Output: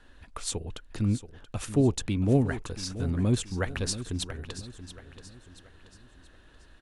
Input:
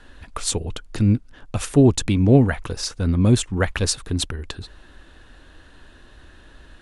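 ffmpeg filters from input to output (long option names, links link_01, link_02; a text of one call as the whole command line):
ffmpeg -i in.wav -af "aecho=1:1:680|1360|2040|2720:0.224|0.094|0.0395|0.0166,volume=-9dB" out.wav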